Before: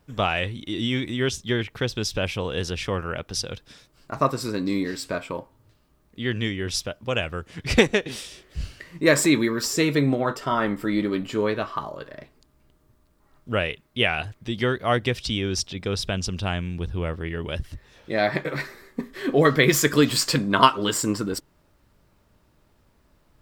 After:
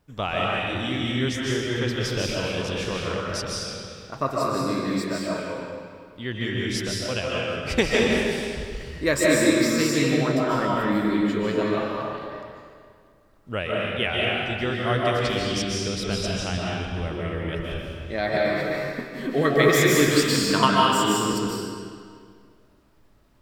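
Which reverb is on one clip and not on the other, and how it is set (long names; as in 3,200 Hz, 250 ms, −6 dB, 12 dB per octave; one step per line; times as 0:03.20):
comb and all-pass reverb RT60 2.1 s, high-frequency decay 0.85×, pre-delay 105 ms, DRR −4.5 dB
level −5 dB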